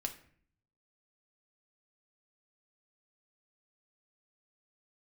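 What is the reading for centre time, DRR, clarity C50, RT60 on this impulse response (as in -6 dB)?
11 ms, 3.5 dB, 12.0 dB, 0.55 s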